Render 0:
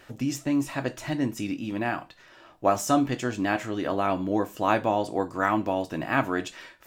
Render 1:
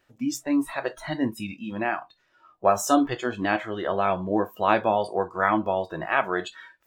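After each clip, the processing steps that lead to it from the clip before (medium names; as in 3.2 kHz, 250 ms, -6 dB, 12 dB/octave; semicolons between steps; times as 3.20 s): spectral noise reduction 18 dB; trim +2.5 dB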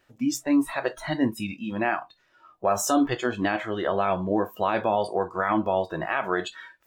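peak limiter -14.5 dBFS, peak gain reduction 10 dB; trim +2 dB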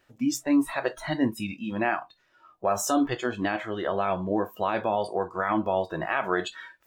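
gain riding within 4 dB 2 s; trim -2 dB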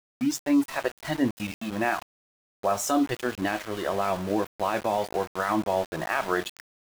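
small samples zeroed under -33.5 dBFS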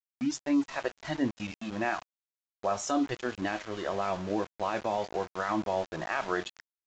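resampled via 16 kHz; trim -4.5 dB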